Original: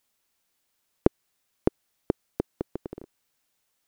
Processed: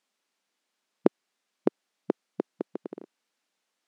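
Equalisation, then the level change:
linear-phase brick-wall high-pass 170 Hz
high-frequency loss of the air 65 metres
0.0 dB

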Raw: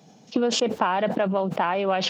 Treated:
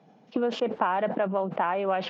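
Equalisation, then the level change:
band-pass filter 120–2,000 Hz
low-shelf EQ 320 Hz −5 dB
−1.5 dB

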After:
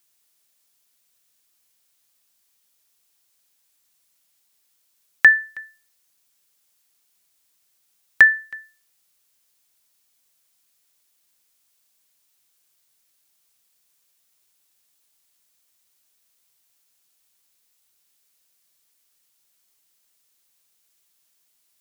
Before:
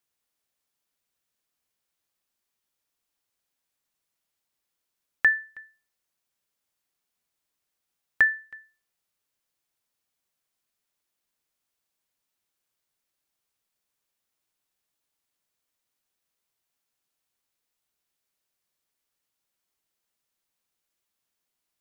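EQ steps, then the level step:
high-pass filter 48 Hz
high-shelf EQ 2,800 Hz +11 dB
+5.5 dB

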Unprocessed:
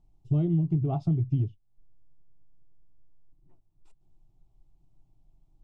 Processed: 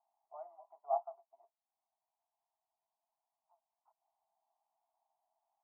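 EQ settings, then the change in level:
Chebyshev high-pass with heavy ripple 650 Hz, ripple 3 dB
Butterworth low-pass 1,100 Hz 36 dB per octave
+5.5 dB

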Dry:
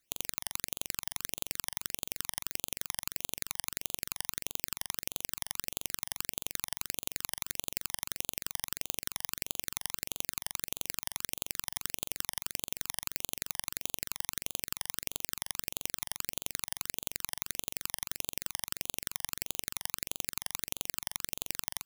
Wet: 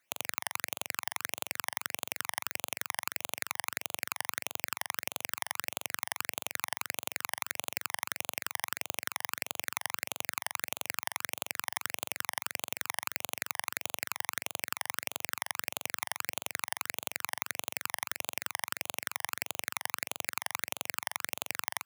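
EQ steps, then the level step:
high-pass filter 99 Hz 24 dB per octave
flat-topped bell 1,200 Hz +10.5 dB 2.4 octaves
−1.5 dB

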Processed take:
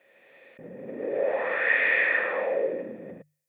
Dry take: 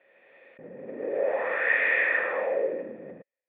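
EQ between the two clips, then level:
bass and treble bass +6 dB, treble +14 dB
mains-hum notches 50/100/150 Hz
0.0 dB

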